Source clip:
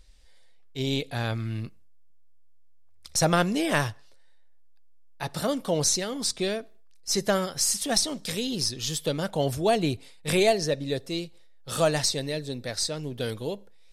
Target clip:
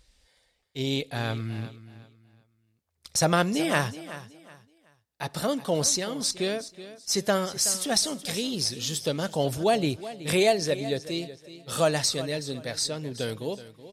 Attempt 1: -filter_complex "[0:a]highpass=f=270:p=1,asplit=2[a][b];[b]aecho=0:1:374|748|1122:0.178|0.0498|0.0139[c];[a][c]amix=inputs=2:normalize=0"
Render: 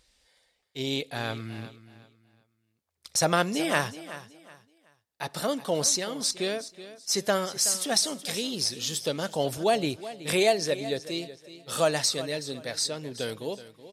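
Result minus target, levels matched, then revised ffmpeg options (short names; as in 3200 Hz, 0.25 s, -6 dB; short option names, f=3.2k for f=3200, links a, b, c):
125 Hz band -4.5 dB
-filter_complex "[0:a]highpass=f=77:p=1,asplit=2[a][b];[b]aecho=0:1:374|748|1122:0.178|0.0498|0.0139[c];[a][c]amix=inputs=2:normalize=0"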